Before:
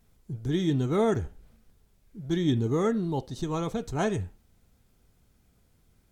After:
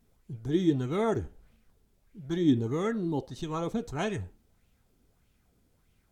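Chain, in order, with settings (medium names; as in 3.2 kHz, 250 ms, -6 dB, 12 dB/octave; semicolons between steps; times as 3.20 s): sweeping bell 1.6 Hz 260–2900 Hz +9 dB; trim -4.5 dB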